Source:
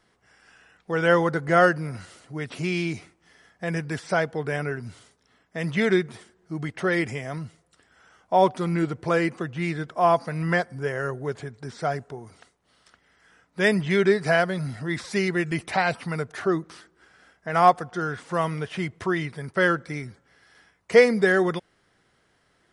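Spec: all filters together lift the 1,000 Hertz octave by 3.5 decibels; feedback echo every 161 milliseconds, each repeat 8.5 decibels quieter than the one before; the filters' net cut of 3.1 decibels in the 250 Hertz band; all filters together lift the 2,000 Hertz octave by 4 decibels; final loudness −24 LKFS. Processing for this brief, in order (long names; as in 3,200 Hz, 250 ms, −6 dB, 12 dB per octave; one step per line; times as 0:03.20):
parametric band 250 Hz −6 dB
parametric band 1,000 Hz +4.5 dB
parametric band 2,000 Hz +3.5 dB
repeating echo 161 ms, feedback 38%, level −8.5 dB
level −1.5 dB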